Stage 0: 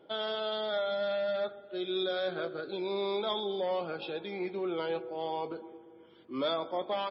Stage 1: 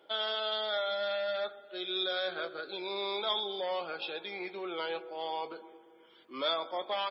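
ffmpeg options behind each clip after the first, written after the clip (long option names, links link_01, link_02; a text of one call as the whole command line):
ffmpeg -i in.wav -af "highpass=frequency=1300:poles=1,volume=5dB" out.wav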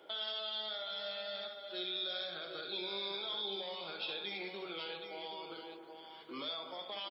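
ffmpeg -i in.wav -filter_complex "[0:a]alimiter=level_in=6dB:limit=-24dB:level=0:latency=1:release=78,volume=-6dB,acrossover=split=190|3000[link_01][link_02][link_03];[link_02]acompressor=threshold=-49dB:ratio=6[link_04];[link_01][link_04][link_03]amix=inputs=3:normalize=0,aecho=1:1:66|319|774:0.473|0.211|0.376,volume=3dB" out.wav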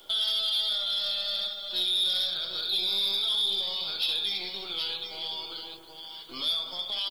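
ffmpeg -i in.wav -filter_complex "[0:a]acrossover=split=250|790[link_01][link_02][link_03];[link_02]aeval=exprs='max(val(0),0)':channel_layout=same[link_04];[link_01][link_04][link_03]amix=inputs=3:normalize=0,aexciter=amount=4.9:drive=7.3:freq=3200,asoftclip=type=tanh:threshold=-23dB,volume=3dB" out.wav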